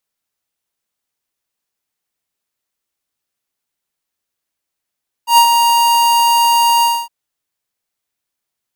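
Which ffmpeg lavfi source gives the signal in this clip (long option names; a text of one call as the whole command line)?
ffmpeg -f lavfi -i "aevalsrc='0.501*(2*lt(mod(938*t,1),0.5)-1)':duration=1.812:sample_rate=44100,afade=type=in:duration=0.106,afade=type=out:start_time=0.106:duration=0.079:silence=0.531,afade=type=out:start_time=1.56:duration=0.252" out.wav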